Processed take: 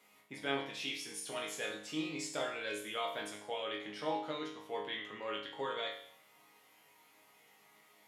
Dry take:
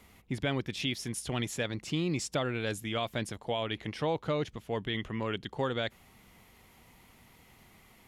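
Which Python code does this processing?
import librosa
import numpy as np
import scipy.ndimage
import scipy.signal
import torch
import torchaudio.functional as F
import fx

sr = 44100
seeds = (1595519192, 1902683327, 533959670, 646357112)

y = scipy.signal.sosfilt(scipy.signal.butter(2, 370.0, 'highpass', fs=sr, output='sos'), x)
y = fx.resonator_bank(y, sr, root=44, chord='sus4', decay_s=0.63)
y = y * librosa.db_to_amplitude(13.5)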